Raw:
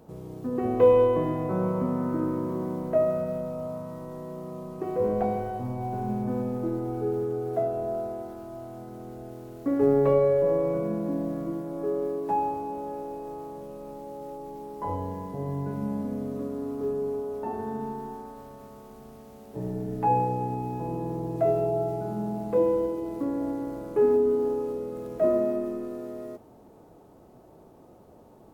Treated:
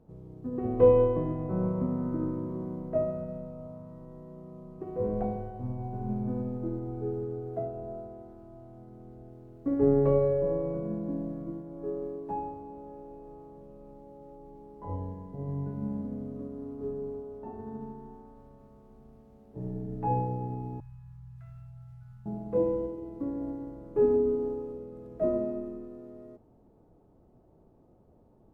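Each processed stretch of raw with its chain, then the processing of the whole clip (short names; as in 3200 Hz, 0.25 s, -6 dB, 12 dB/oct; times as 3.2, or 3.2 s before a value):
20.8–22.26 Chebyshev band-stop 110–1400 Hz, order 3 + mismatched tape noise reduction decoder only
whole clip: tilt -3 dB/oct; upward expander 1.5:1, over -30 dBFS; gain -4 dB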